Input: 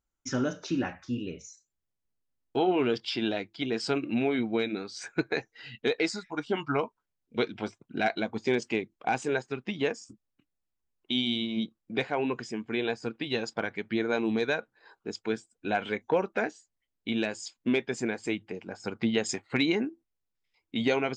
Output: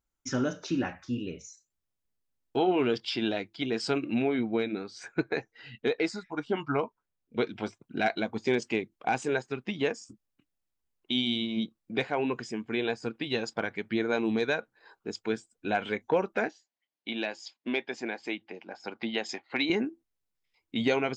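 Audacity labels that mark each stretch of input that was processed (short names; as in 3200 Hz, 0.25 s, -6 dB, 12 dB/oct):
4.220000	7.470000	high shelf 3000 Hz -7.5 dB
16.480000	19.700000	speaker cabinet 330–5300 Hz, peaks and dips at 440 Hz -6 dB, 800 Hz +3 dB, 1300 Hz -4 dB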